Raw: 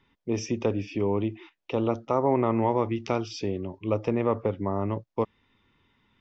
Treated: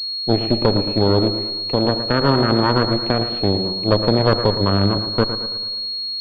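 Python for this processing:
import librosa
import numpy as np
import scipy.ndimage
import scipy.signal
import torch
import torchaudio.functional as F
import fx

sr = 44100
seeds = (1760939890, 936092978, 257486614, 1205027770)

p1 = np.minimum(x, 2.0 * 10.0 ** (-21.0 / 20.0) - x)
p2 = fx.rider(p1, sr, range_db=10, speed_s=2.0)
p3 = p1 + (p2 * 10.0 ** (2.0 / 20.0))
p4 = fx.cheby_harmonics(p3, sr, harmonics=(4,), levels_db=(-8,), full_scale_db=-5.0)
p5 = p4 + fx.echo_feedback(p4, sr, ms=112, feedback_pct=48, wet_db=-10, dry=0)
p6 = fx.rev_freeverb(p5, sr, rt60_s=1.4, hf_ratio=0.6, predelay_ms=15, drr_db=14.5)
p7 = fx.pwm(p6, sr, carrier_hz=4300.0)
y = p7 * 10.0 ** (-1.0 / 20.0)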